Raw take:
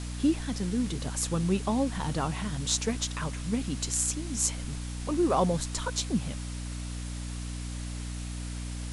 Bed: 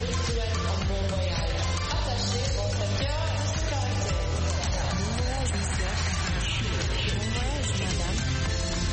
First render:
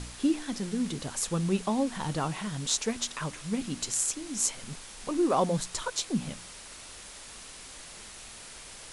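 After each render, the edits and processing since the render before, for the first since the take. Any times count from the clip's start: de-hum 60 Hz, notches 5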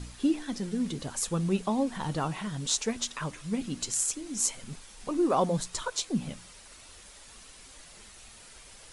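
noise reduction 7 dB, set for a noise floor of -46 dBFS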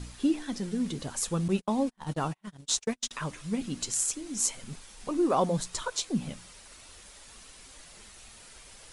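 1.48–3.11 s: gate -33 dBFS, range -42 dB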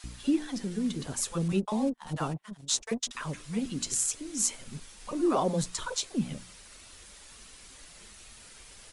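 bands offset in time highs, lows 40 ms, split 740 Hz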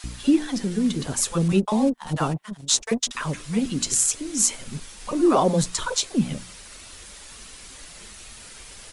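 trim +8 dB; peak limiter -3 dBFS, peak gain reduction 1.5 dB

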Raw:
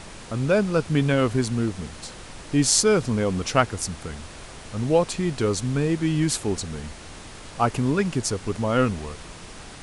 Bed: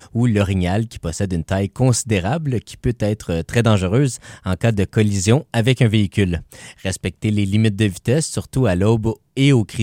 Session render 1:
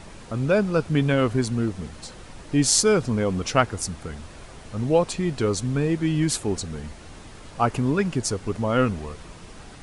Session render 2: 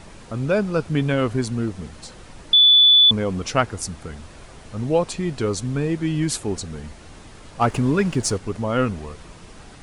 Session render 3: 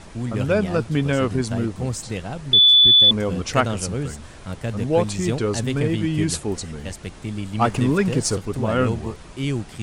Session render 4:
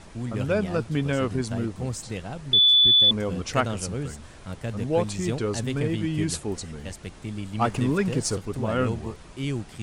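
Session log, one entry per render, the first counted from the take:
noise reduction 6 dB, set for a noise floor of -42 dBFS
2.53–3.11 s: bleep 3.47 kHz -9 dBFS; 7.61–8.38 s: waveshaping leveller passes 1
add bed -11 dB
trim -4.5 dB

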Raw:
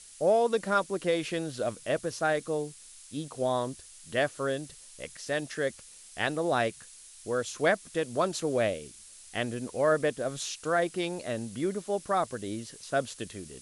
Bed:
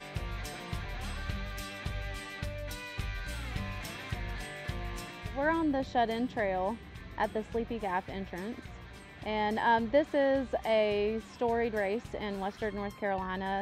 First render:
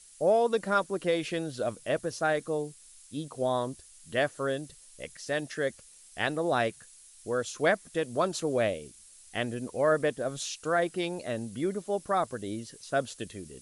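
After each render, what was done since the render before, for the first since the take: noise reduction 6 dB, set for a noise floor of -51 dBFS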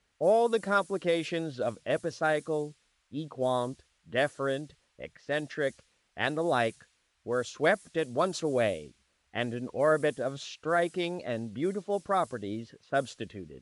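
level-controlled noise filter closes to 1.6 kHz, open at -23 dBFS; high-pass 50 Hz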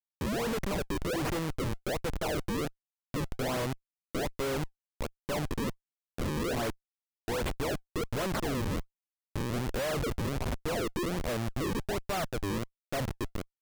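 Schmitt trigger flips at -36 dBFS; decimation with a swept rate 36×, swing 160% 1.3 Hz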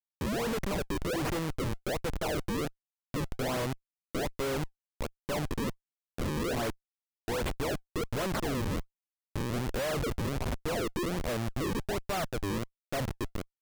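no audible change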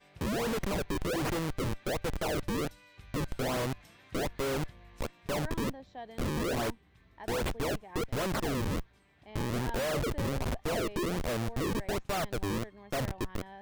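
add bed -16 dB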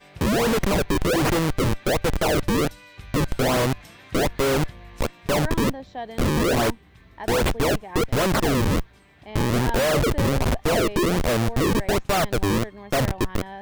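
trim +11 dB

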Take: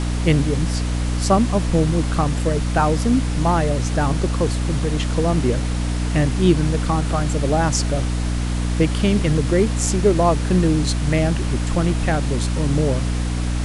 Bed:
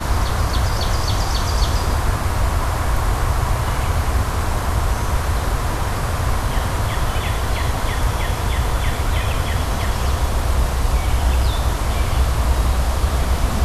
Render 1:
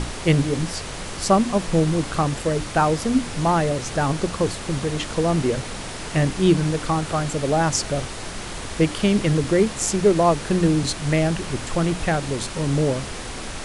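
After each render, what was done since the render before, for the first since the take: hum notches 60/120/180/240/300 Hz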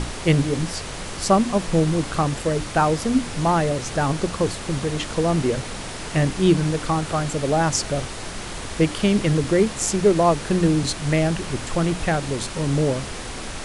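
no audible change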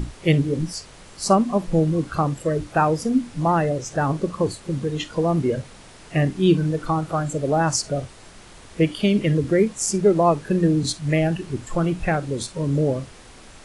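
noise print and reduce 13 dB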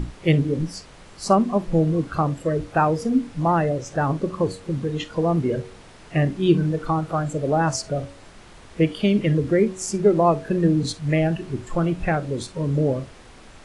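treble shelf 5.2 kHz -8.5 dB; de-hum 93.5 Hz, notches 7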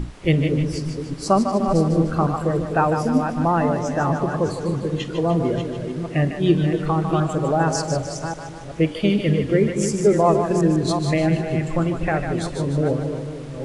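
chunks repeated in reverse 379 ms, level -7.5 dB; two-band feedback delay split 480 Hz, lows 245 ms, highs 151 ms, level -7.5 dB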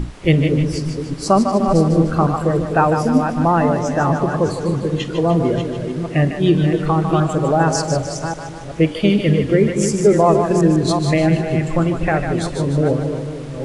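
trim +4 dB; peak limiter -3 dBFS, peak gain reduction 3 dB

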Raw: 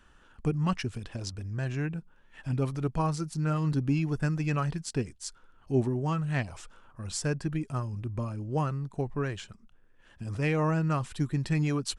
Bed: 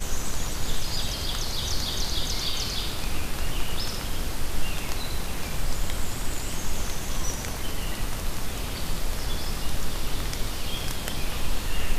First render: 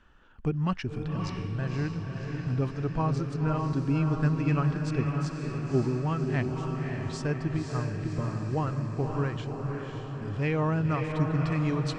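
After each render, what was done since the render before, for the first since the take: distance through air 130 m; echo that smears into a reverb 552 ms, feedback 62%, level -4 dB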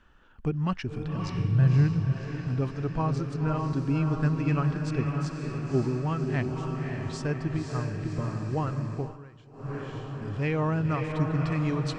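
1.34–2.13 s: peaking EQ 130 Hz +12.5 dB; 8.94–9.76 s: dip -18 dB, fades 0.24 s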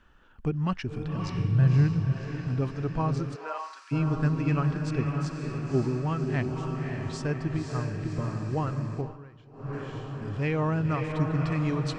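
3.34–3.91 s: high-pass 360 Hz -> 1.4 kHz 24 dB/octave; 9.01–9.73 s: distance through air 93 m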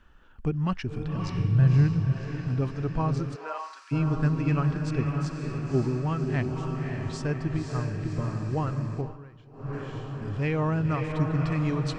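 bass shelf 72 Hz +5.5 dB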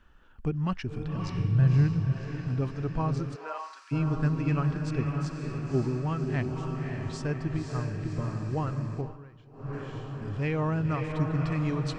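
trim -2 dB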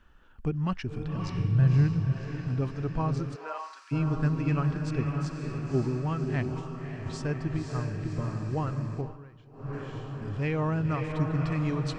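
6.59–7.05 s: detune thickener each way 49 cents -> 59 cents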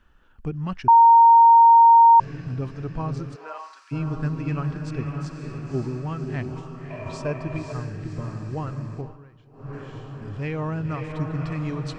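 0.88–2.20 s: bleep 925 Hz -8.5 dBFS; 6.90–7.73 s: small resonant body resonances 620/1000/2400 Hz, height 16 dB, ringing for 35 ms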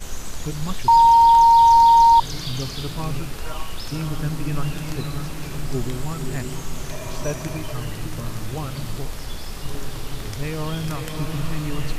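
add bed -3 dB

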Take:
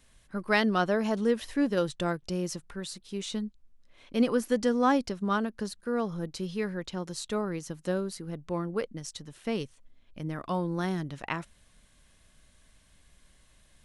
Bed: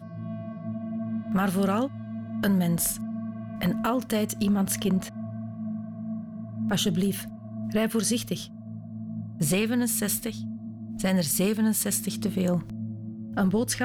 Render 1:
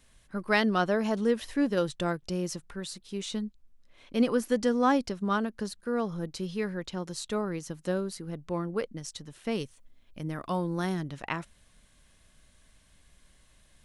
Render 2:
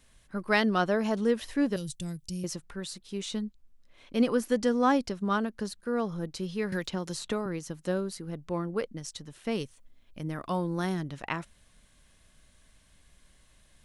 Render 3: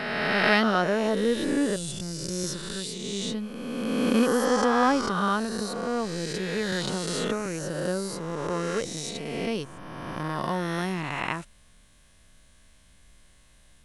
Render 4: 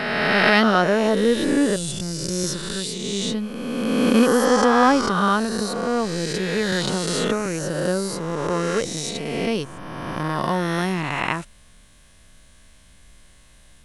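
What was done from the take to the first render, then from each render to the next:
9.51–10.94 s: treble shelf 9.2 kHz +8.5 dB
1.76–2.44 s: FFT filter 160 Hz 0 dB, 470 Hz -18 dB, 1.4 kHz -24 dB, 2.3 kHz -10 dB, 3.7 kHz -5 dB, 8.2 kHz +7 dB; 6.72–7.46 s: three bands compressed up and down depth 100%
reverse spectral sustain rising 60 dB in 2.24 s
trim +6 dB; peak limiter -3 dBFS, peak gain reduction 2.5 dB

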